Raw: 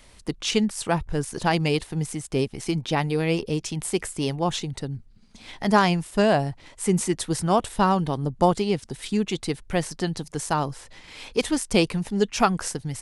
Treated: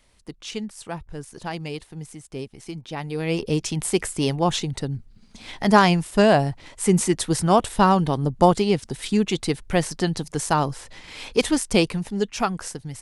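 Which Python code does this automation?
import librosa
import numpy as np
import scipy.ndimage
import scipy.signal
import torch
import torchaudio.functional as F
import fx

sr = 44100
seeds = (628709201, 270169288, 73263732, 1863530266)

y = fx.gain(x, sr, db=fx.line((2.91, -9.0), (3.52, 3.5), (11.47, 3.5), (12.44, -3.5)))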